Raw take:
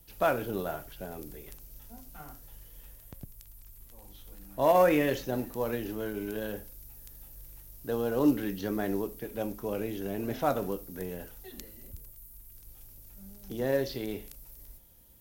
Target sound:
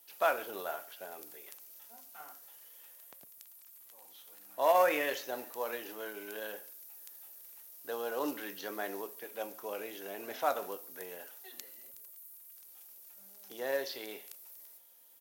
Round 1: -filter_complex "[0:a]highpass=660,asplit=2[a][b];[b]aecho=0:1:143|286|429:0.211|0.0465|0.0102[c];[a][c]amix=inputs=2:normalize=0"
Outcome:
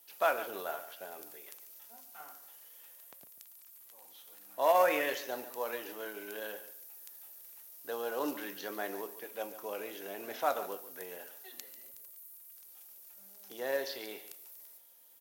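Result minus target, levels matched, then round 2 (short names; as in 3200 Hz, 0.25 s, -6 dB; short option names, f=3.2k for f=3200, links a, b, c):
echo-to-direct +9.5 dB
-filter_complex "[0:a]highpass=660,asplit=2[a][b];[b]aecho=0:1:143|286:0.0708|0.0156[c];[a][c]amix=inputs=2:normalize=0"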